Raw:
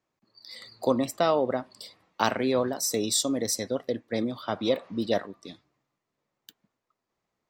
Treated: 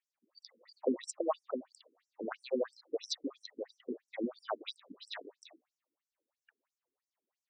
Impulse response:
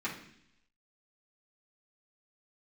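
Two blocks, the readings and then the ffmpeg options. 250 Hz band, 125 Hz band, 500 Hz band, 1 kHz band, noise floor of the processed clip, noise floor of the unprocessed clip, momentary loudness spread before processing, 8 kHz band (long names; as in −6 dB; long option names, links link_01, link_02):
−12.0 dB, below −25 dB, −11.0 dB, −14.5 dB, below −85 dBFS, −84 dBFS, 19 LU, −19.0 dB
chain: -af "afftfilt=real='re*between(b*sr/1024,300*pow(7600/300,0.5+0.5*sin(2*PI*3*pts/sr))/1.41,300*pow(7600/300,0.5+0.5*sin(2*PI*3*pts/sr))*1.41)':imag='im*between(b*sr/1024,300*pow(7600/300,0.5+0.5*sin(2*PI*3*pts/sr))/1.41,300*pow(7600/300,0.5+0.5*sin(2*PI*3*pts/sr))*1.41)':win_size=1024:overlap=0.75,volume=-3dB"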